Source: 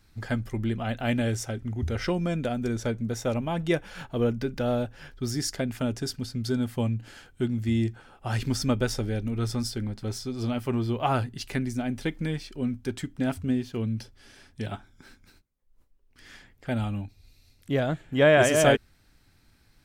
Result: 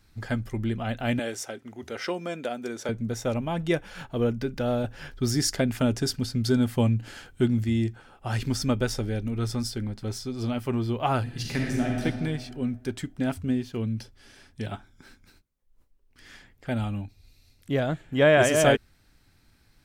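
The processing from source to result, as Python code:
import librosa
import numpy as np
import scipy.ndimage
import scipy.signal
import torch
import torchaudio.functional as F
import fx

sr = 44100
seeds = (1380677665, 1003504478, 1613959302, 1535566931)

y = fx.highpass(x, sr, hz=350.0, slope=12, at=(1.19, 2.89))
y = fx.reverb_throw(y, sr, start_s=11.22, length_s=0.81, rt60_s=1.8, drr_db=-2.0)
y = fx.edit(y, sr, fx.clip_gain(start_s=4.84, length_s=2.8, db=4.5), tone=tone)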